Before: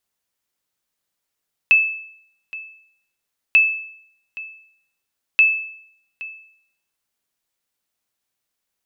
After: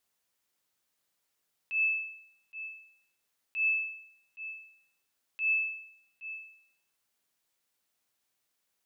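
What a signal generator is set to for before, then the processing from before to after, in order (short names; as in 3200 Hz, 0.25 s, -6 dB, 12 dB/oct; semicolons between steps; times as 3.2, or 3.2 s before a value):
sonar ping 2620 Hz, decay 0.67 s, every 1.84 s, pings 3, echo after 0.82 s, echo -19 dB -6.5 dBFS
low shelf 120 Hz -5.5 dB; compressor, threshold -20 dBFS; auto swell 0.13 s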